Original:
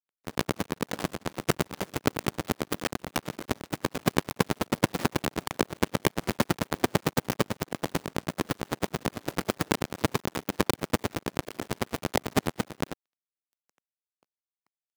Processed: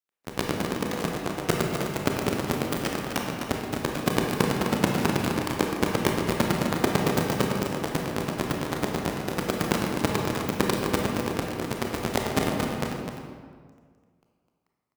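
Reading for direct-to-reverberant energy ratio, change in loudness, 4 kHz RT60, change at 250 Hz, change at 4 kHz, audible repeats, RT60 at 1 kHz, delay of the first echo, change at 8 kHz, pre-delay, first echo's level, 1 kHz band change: -0.5 dB, +3.5 dB, 1.1 s, +4.0 dB, +2.5 dB, 1, 1.7 s, 0.255 s, +2.0 dB, 25 ms, -7.5 dB, +3.5 dB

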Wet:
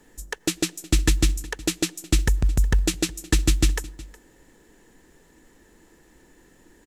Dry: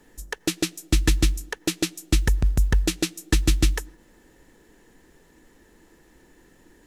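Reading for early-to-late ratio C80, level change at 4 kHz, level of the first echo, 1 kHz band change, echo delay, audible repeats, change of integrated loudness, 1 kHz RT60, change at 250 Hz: none, +0.5 dB, -20.5 dB, 0.0 dB, 0.365 s, 1, +0.5 dB, none, 0.0 dB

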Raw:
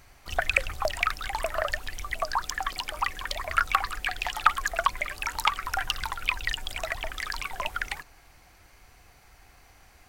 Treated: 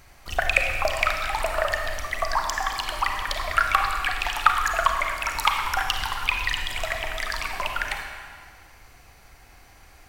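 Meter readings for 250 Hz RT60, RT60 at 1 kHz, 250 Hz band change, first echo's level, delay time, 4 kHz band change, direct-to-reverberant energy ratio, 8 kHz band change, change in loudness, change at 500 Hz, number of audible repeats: 1.9 s, 2.0 s, +4.5 dB, none, none, +4.0 dB, 3.0 dB, +4.0 dB, +4.5 dB, +4.5 dB, none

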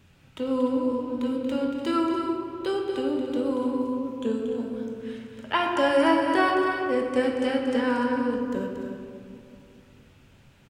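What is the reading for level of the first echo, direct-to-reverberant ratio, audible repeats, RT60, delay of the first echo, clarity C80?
-8.5 dB, -0.5 dB, 2, 2.3 s, 0.232 s, 2.0 dB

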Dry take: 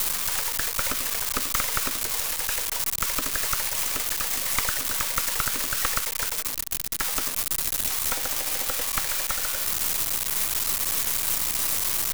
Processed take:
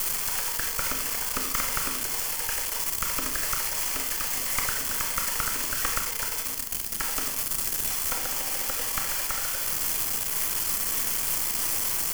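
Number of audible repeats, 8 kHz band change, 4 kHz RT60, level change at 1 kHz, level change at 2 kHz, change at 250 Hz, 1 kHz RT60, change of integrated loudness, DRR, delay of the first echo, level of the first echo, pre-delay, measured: none, -1.5 dB, 0.45 s, -1.5 dB, -1.5 dB, -0.5 dB, 0.50 s, -1.5 dB, 4.0 dB, none, none, 26 ms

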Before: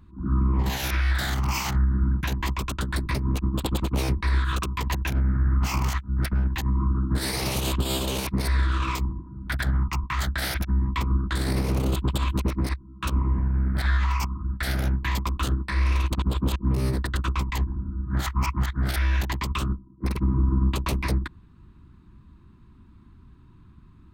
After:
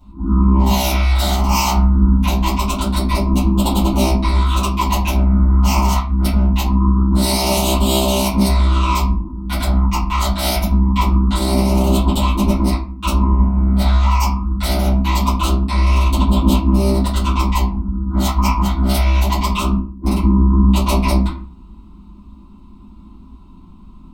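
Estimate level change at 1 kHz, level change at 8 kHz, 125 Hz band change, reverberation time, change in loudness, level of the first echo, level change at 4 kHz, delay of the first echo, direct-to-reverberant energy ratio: +12.5 dB, +10.5 dB, +8.0 dB, 0.45 s, +10.0 dB, none, +9.5 dB, none, -12.5 dB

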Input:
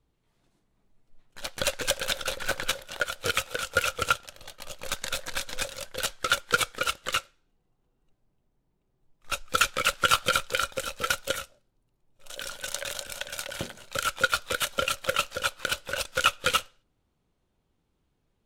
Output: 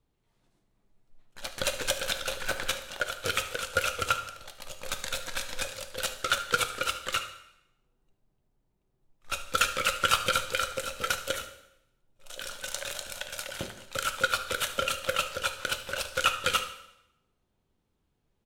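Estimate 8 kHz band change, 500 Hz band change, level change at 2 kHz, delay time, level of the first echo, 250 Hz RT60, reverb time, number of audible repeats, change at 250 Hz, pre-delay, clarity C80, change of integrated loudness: -2.0 dB, -1.5 dB, -2.0 dB, 74 ms, -16.5 dB, 0.80 s, 0.85 s, 1, -2.0 dB, 4 ms, 13.0 dB, -2.0 dB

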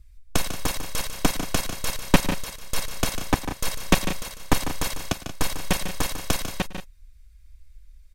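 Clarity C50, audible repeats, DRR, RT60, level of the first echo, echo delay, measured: none, 3, none, none, -20.0 dB, 0.106 s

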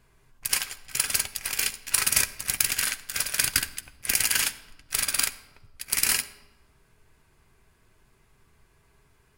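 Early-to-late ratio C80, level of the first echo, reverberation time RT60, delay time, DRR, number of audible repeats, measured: 17.5 dB, none, 1.2 s, none, 10.5 dB, none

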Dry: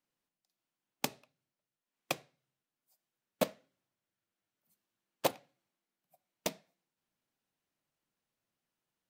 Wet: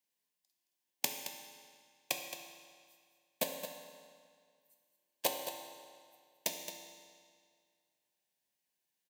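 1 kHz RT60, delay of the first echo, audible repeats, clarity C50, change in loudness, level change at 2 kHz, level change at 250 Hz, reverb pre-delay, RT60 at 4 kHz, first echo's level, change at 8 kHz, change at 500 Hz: 2.0 s, 0.22 s, 1, 4.0 dB, -1.5 dB, +0.5 dB, -7.0 dB, 5 ms, 1.8 s, -10.5 dB, +5.0 dB, -4.0 dB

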